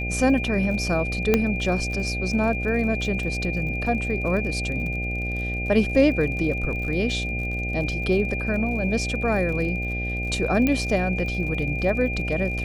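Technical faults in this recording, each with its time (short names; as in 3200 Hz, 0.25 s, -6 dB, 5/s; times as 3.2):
buzz 60 Hz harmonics 13 -29 dBFS
crackle 49/s -33 dBFS
tone 2400 Hz -29 dBFS
1.34 pop -5 dBFS
10.67 pop -10 dBFS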